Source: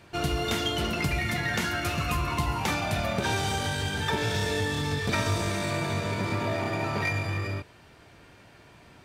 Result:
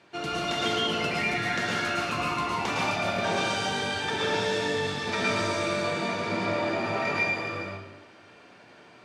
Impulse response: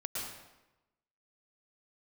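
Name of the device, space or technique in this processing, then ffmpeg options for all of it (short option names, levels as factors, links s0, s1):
supermarket ceiling speaker: -filter_complex "[0:a]asettb=1/sr,asplit=3[s0][s1][s2];[s0]atrim=end=5.974[s3];[s1]atrim=start=5.97:end=6.64,asetpts=PTS-STARTPTS,afade=t=in:d=0.004:c=qsin,afade=t=out:st=0.666:d=0.004:c=qsin,lowpass=11000[s4];[s2]atrim=start=6.636[s5];[s3][s4]acrossfade=d=0.004:c1=hsin:c2=qsin[s6];[s6][s5]acrossfade=d=0.004:c1=qsin:c2=hsin,highpass=220,lowpass=6500[s7];[1:a]atrim=start_sample=2205[s8];[s7][s8]afir=irnorm=-1:irlink=0"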